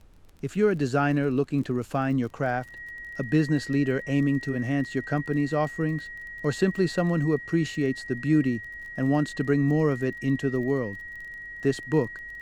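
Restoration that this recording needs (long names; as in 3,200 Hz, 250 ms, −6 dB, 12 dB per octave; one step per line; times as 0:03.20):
click removal
notch filter 1,900 Hz, Q 30
downward expander −32 dBFS, range −21 dB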